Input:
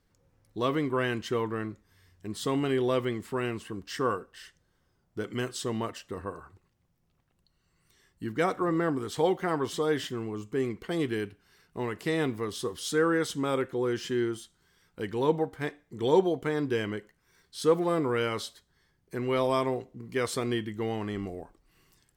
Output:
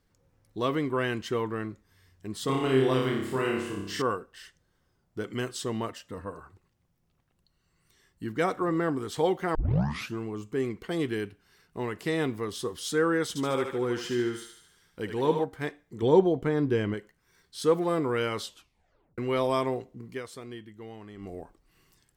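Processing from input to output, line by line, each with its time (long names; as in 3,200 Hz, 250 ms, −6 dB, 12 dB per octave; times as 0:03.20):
0:02.45–0:04.02: flutter between parallel walls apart 5.2 metres, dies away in 0.8 s
0:05.95–0:06.37: notch comb filter 380 Hz
0:09.55: tape start 0.64 s
0:13.28–0:15.44: feedback echo with a high-pass in the loop 74 ms, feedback 56%, high-pass 510 Hz, level −5 dB
0:16.02–0:16.94: spectral tilt −2 dB per octave
0:18.43: tape stop 0.75 s
0:20.04–0:21.36: duck −12 dB, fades 0.19 s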